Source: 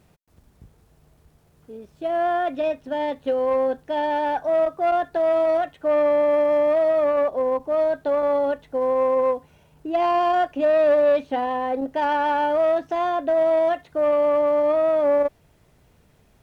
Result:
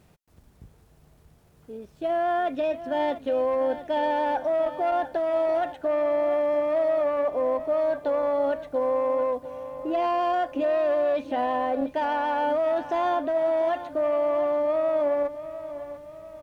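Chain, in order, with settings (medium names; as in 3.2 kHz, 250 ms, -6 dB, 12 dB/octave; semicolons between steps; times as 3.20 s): peak limiter -19.5 dBFS, peak gain reduction 7.5 dB; feedback delay 695 ms, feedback 47%, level -13 dB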